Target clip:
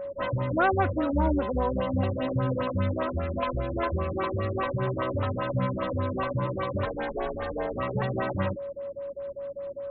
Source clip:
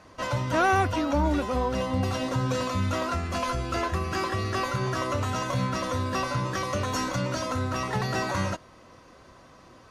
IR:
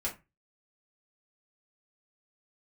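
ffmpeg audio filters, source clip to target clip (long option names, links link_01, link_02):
-filter_complex "[0:a]asettb=1/sr,asplit=3[link_01][link_02][link_03];[link_01]atrim=end=6.854[link_04];[link_02]atrim=start=6.85:end=7.77,asetpts=PTS-STARTPTS,afade=type=in:duration=0.004:curve=qsin,afade=type=out:start_time=0.916:duration=0.004:curve=qsin,aeval=exprs='val(0)*sin(2*PI*550*n/s)':channel_layout=same[link_05];[link_03]atrim=start=7.766[link_06];[link_04][link_05]acrossfade=duration=0.004:curve1=hsin:curve2=qsin[link_07];[link_07][link_06]acrossfade=duration=0.004:curve1=qsin:curve2=hsin,aeval=exprs='val(0)+0.0251*sin(2*PI*560*n/s)':channel_layout=same,afftfilt=real='re*lt(b*sr/1024,430*pow(4300/430,0.5+0.5*sin(2*PI*5*pts/sr)))':imag='im*lt(b*sr/1024,430*pow(4300/430,0.5+0.5*sin(2*PI*5*pts/sr)))':win_size=1024:overlap=0.75"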